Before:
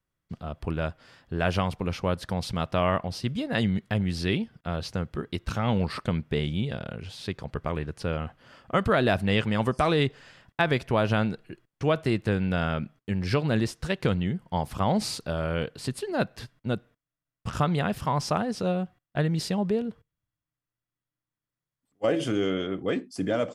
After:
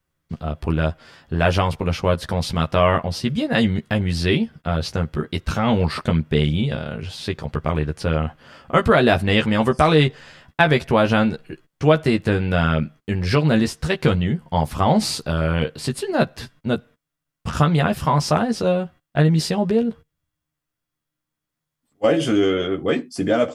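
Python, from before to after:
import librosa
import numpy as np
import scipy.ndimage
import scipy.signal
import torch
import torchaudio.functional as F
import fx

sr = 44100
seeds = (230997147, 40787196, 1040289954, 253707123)

y = fx.doubler(x, sr, ms=13.0, db=-5)
y = F.gain(torch.from_numpy(y), 6.5).numpy()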